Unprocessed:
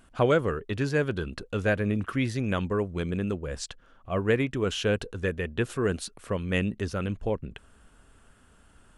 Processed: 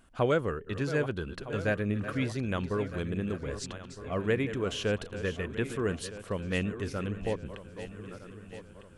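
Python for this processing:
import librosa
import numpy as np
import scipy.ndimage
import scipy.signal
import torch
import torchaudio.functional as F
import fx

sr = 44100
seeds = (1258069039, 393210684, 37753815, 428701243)

y = fx.reverse_delay_fb(x, sr, ms=630, feedback_pct=65, wet_db=-11.5)
y = y * 10.0 ** (-4.0 / 20.0)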